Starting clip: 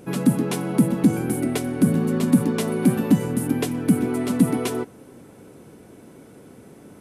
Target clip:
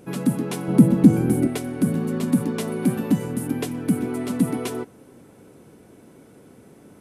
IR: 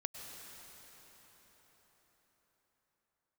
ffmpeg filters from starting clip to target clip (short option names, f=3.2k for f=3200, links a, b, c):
-filter_complex "[0:a]asettb=1/sr,asplit=3[a][b][c];[a]atrim=end=0.684[d];[b]atrim=start=0.68:end=1.47,asetpts=PTS-STARTPTS,afade=t=in:d=0.004:c=qsin,afade=t=out:st=0.786:d=0.004:c=qsin,lowshelf=f=490:g=9.5[e];[c]atrim=start=1.466[f];[d][e]acrossfade=d=0.004:c1=hsin:c2=qsin[g];[g][f]acrossfade=d=0.004:c1=qsin:c2=hsin,volume=-3dB"